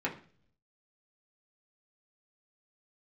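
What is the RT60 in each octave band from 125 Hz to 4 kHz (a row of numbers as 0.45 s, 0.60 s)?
0.95 s, 0.70 s, 0.50 s, 0.40 s, 0.45 s, 0.50 s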